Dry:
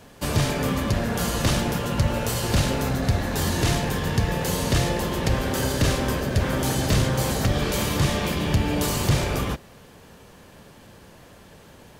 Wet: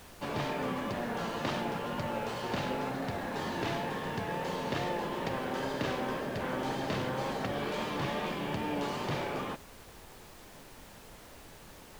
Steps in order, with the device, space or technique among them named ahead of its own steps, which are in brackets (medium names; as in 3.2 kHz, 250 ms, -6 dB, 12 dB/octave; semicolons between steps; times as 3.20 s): horn gramophone (band-pass 210–3200 Hz; peaking EQ 870 Hz +4.5 dB 0.53 oct; wow and flutter; pink noise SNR 17 dB); trim -8 dB